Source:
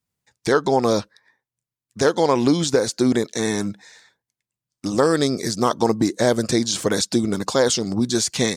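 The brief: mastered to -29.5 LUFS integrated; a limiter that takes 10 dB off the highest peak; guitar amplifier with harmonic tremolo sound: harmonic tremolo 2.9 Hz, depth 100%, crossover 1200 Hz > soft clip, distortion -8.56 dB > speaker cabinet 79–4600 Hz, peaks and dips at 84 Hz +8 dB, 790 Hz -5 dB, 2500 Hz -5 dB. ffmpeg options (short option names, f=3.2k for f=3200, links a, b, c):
-filter_complex "[0:a]alimiter=limit=-14.5dB:level=0:latency=1,acrossover=split=1200[a][b];[a]aeval=exprs='val(0)*(1-1/2+1/2*cos(2*PI*2.9*n/s))':c=same[c];[b]aeval=exprs='val(0)*(1-1/2-1/2*cos(2*PI*2.9*n/s))':c=same[d];[c][d]amix=inputs=2:normalize=0,asoftclip=threshold=-27.5dB,highpass=79,equalizer=f=84:t=q:w=4:g=8,equalizer=f=790:t=q:w=4:g=-5,equalizer=f=2.5k:t=q:w=4:g=-5,lowpass=f=4.6k:w=0.5412,lowpass=f=4.6k:w=1.3066,volume=5.5dB"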